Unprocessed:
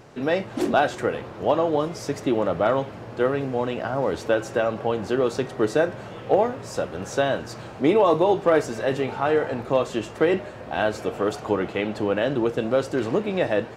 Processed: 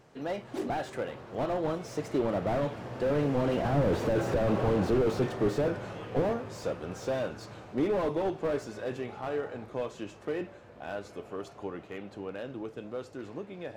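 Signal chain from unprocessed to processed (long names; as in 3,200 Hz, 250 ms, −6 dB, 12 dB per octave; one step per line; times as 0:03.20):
source passing by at 0:04.29, 19 m/s, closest 12 metres
slew-rate limiting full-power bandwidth 14 Hz
level +6 dB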